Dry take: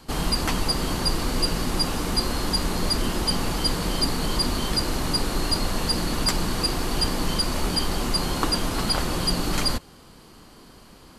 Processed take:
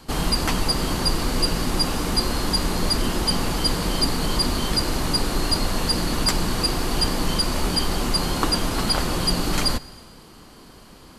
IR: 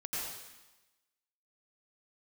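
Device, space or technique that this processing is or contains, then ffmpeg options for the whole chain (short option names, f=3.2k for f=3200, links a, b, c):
compressed reverb return: -filter_complex "[0:a]asplit=2[a][b];[1:a]atrim=start_sample=2205[c];[b][c]afir=irnorm=-1:irlink=0,acompressor=threshold=-22dB:ratio=6,volume=-16.5dB[d];[a][d]amix=inputs=2:normalize=0,volume=1.5dB"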